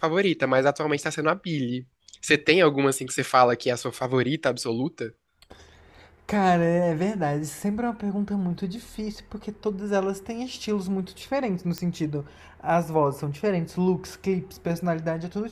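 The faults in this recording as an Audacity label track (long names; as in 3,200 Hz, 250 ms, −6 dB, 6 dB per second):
11.780000	11.780000	click −14 dBFS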